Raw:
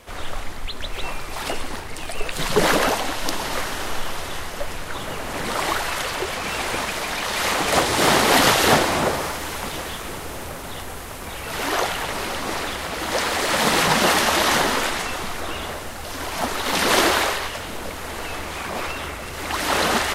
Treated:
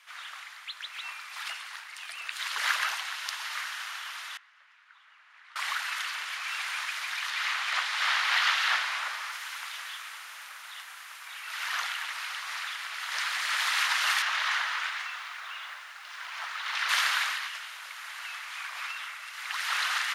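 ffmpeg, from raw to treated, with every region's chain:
ffmpeg -i in.wav -filter_complex "[0:a]asettb=1/sr,asplit=3[link_01][link_02][link_03];[link_01]atrim=end=4.374[link_04];[link_02]atrim=start=4.37:end=5.56,asetpts=PTS-STARTPTS,afade=type=in:duration=0.004:curve=qsin,afade=type=out:start_time=1.186:duration=0.004:curve=qsin,lowpass=1500,aderivative[link_05];[link_03]atrim=start=5.556[link_06];[link_04][link_05]acrossfade=duration=0.004:curve1=hsin:curve2=qsin[link_07];[link_07][link_06]acrossfade=duration=0.004:curve1=qsin:curve2=hsin,asettb=1/sr,asplit=3[link_08][link_09][link_10];[link_08]atrim=end=7.304[link_11];[link_09]atrim=start=7.3:end=9.32,asetpts=PTS-STARTPTS,afade=type=in:duration=0.004:curve=qsin,afade=type=out:start_time=2.016:duration=0.004:curve=qsin,acrossover=split=5300[link_12][link_13];[link_13]acompressor=threshold=-37dB:ratio=4:attack=1:release=60[link_14];[link_12][link_14]amix=inputs=2:normalize=0,equalizer=frequency=260:width=3.5:gain=-12.5[link_15];[link_10]atrim=start=9.316[link_16];[link_11][link_15]acrossfade=duration=0.004:curve1=hsin:curve2=qsin[link_17];[link_17][link_16]acrossfade=duration=0.004:curve1=qsin:curve2=hsin,asettb=1/sr,asplit=3[link_18][link_19][link_20];[link_18]atrim=end=14.224[link_21];[link_19]atrim=start=14.22:end=16.89,asetpts=PTS-STARTPTS,afade=type=in:duration=0.004:curve=qsin,afade=type=out:start_time=2.666:duration=0.004:curve=qsin,aemphasis=mode=reproduction:type=50fm,acrusher=bits=6:mix=0:aa=0.5[link_22];[link_20]atrim=start=16.886[link_23];[link_21][link_22]acrossfade=duration=0.004:curve1=hsin:curve2=qsin[link_24];[link_24][link_23]acrossfade=duration=0.004:curve1=qsin:curve2=hsin,highpass=frequency=1300:width=0.5412,highpass=frequency=1300:width=1.3066,highshelf=frequency=6100:gain=-11,bandreject=frequency=7900:width=21,volume=-3.5dB" out.wav

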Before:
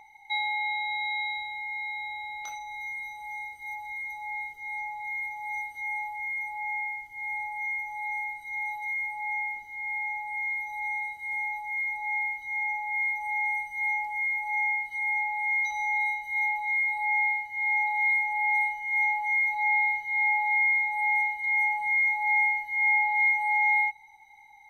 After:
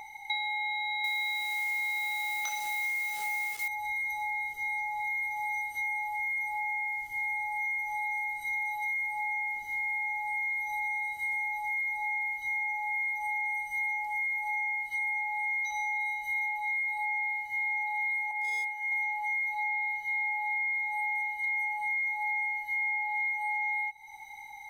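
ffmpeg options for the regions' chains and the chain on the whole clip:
ffmpeg -i in.wav -filter_complex "[0:a]asettb=1/sr,asplit=3[link_01][link_02][link_03];[link_01]atrim=end=1.044[link_04];[link_02]atrim=start=1.04:end=3.68,asetpts=PTS-STARTPTS,afade=type=in:duration=0.004:curve=qsin,afade=type=out:start_time=2.636:duration=0.004:curve=qsin,equalizer=frequency=2400:width_type=o:width=2.9:gain=7.5,acrusher=bits=8:dc=4:mix=0:aa=0.000001,highpass=92[link_05];[link_03]atrim=start=3.676[link_06];[link_04][link_05]acrossfade=duration=0.004:curve1=hsin:curve2=qsin[link_07];[link_07][link_06]acrossfade=duration=0.004:curve1=qsin:curve2=hsin,asettb=1/sr,asplit=3[link_08][link_09][link_10];[link_08]atrim=end=18.314[link_11];[link_09]atrim=start=18.31:end=18.92,asetpts=PTS-STARTPTS,afade=type=in:duration=0.004:curve=qsin,afade=type=out:start_time=0.606:duration=0.004:curve=qsin,highpass=1200,highshelf=frequency=2200:width_type=q:width=1.5:gain=-7.5,asoftclip=type=hard:threshold=-25.5dB[link_12];[link_10]atrim=start=18.916[link_13];[link_11][link_12]acrossfade=duration=0.004:curve1=hsin:curve2=qsin[link_14];[link_14][link_13]acrossfade=duration=0.004:curve1=qsin:curve2=hsin,highshelf=frequency=4800:gain=7.5,acompressor=threshold=-38dB:ratio=6,volume=7dB" out.wav

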